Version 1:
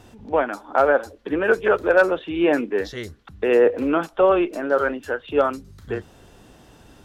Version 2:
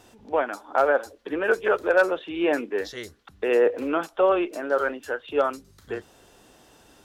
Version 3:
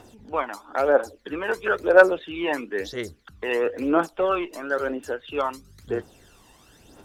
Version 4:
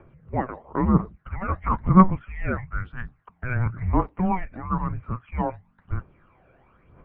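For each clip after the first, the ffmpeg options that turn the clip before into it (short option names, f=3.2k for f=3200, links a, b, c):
-af "bass=f=250:g=-9,treble=f=4k:g=4,volume=-3dB"
-af "aphaser=in_gain=1:out_gain=1:delay=1.1:decay=0.62:speed=1:type=triangular,volume=-1dB"
-af "highpass=f=200:t=q:w=0.5412,highpass=f=200:t=q:w=1.307,lowpass=f=2.4k:t=q:w=0.5176,lowpass=f=2.4k:t=q:w=0.7071,lowpass=f=2.4k:t=q:w=1.932,afreqshift=-370"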